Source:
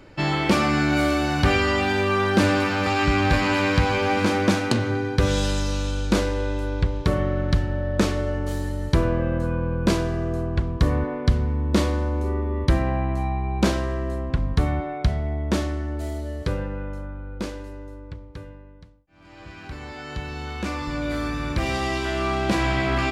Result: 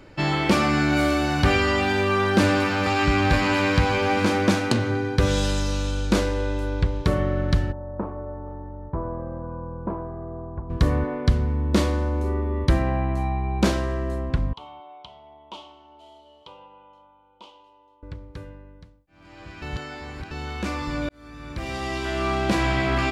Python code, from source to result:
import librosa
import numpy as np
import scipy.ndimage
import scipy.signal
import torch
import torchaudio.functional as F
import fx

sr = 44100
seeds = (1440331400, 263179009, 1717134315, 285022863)

y = fx.ladder_lowpass(x, sr, hz=1100.0, resonance_pct=55, at=(7.71, 10.69), fade=0.02)
y = fx.double_bandpass(y, sr, hz=1700.0, octaves=1.7, at=(14.53, 18.03))
y = fx.edit(y, sr, fx.reverse_span(start_s=19.62, length_s=0.69),
    fx.fade_in_span(start_s=21.09, length_s=1.2), tone=tone)